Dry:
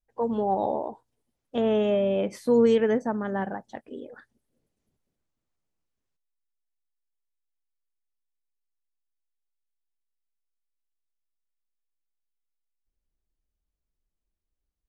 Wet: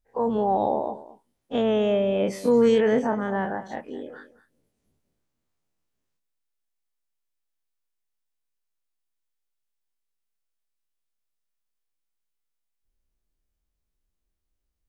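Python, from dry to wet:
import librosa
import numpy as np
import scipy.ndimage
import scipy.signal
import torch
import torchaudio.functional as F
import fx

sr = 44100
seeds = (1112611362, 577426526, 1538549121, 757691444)

y = fx.spec_dilate(x, sr, span_ms=60)
y = y + 10.0 ** (-16.5 / 20.0) * np.pad(y, (int(220 * sr / 1000.0), 0))[:len(y)]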